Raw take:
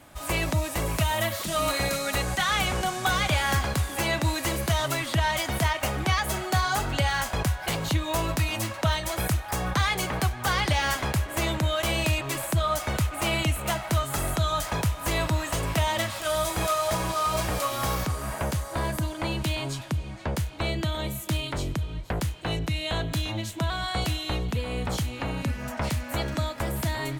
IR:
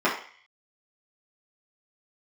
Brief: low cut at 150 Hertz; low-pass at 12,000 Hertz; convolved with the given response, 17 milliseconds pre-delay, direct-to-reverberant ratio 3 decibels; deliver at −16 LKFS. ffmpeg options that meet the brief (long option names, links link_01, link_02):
-filter_complex "[0:a]highpass=150,lowpass=12000,asplit=2[link_01][link_02];[1:a]atrim=start_sample=2205,adelay=17[link_03];[link_02][link_03]afir=irnorm=-1:irlink=0,volume=-19.5dB[link_04];[link_01][link_04]amix=inputs=2:normalize=0,volume=11dB"